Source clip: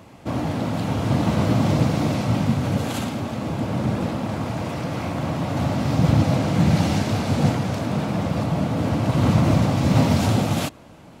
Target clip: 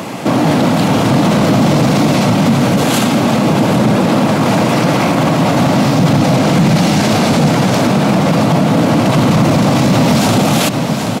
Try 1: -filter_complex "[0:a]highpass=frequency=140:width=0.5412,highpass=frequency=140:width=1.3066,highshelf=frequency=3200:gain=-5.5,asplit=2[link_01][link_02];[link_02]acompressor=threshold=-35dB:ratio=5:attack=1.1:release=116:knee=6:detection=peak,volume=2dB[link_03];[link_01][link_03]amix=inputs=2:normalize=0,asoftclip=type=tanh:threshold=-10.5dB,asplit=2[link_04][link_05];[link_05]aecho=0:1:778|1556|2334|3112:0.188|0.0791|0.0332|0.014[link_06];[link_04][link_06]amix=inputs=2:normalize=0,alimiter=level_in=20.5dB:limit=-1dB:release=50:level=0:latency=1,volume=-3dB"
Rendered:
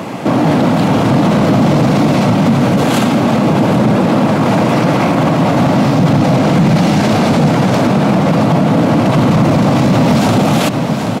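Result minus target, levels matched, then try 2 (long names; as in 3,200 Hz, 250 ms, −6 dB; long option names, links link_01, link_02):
downward compressor: peak gain reduction −6 dB; 8,000 Hz band −6.0 dB
-filter_complex "[0:a]highpass=frequency=140:width=0.5412,highpass=frequency=140:width=1.3066,highshelf=frequency=3200:gain=2.5,asplit=2[link_01][link_02];[link_02]acompressor=threshold=-42.5dB:ratio=5:attack=1.1:release=116:knee=6:detection=peak,volume=2dB[link_03];[link_01][link_03]amix=inputs=2:normalize=0,asoftclip=type=tanh:threshold=-10.5dB,asplit=2[link_04][link_05];[link_05]aecho=0:1:778|1556|2334|3112:0.188|0.0791|0.0332|0.014[link_06];[link_04][link_06]amix=inputs=2:normalize=0,alimiter=level_in=20.5dB:limit=-1dB:release=50:level=0:latency=1,volume=-3dB"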